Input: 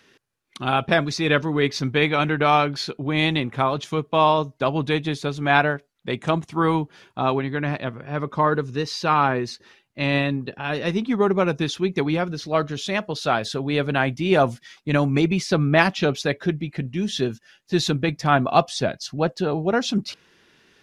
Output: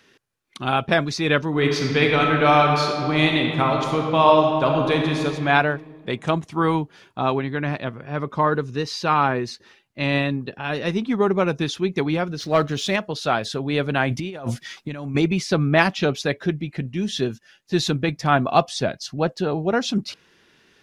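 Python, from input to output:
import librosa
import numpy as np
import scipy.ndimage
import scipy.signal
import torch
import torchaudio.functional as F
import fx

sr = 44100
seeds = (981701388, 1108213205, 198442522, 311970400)

y = fx.reverb_throw(x, sr, start_s=1.48, length_s=3.74, rt60_s=2.2, drr_db=1.0)
y = fx.leveller(y, sr, passes=1, at=(12.4, 12.96))
y = fx.over_compress(y, sr, threshold_db=-29.0, ratio=-1.0, at=(14.09, 15.15))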